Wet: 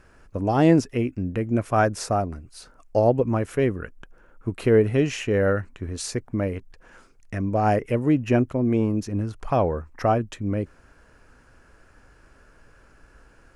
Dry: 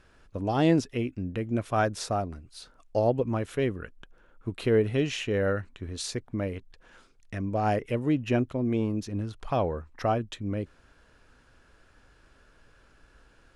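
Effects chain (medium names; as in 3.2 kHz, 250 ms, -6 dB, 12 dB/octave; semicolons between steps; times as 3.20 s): peaking EQ 3.6 kHz -10 dB 0.65 oct; trim +5.5 dB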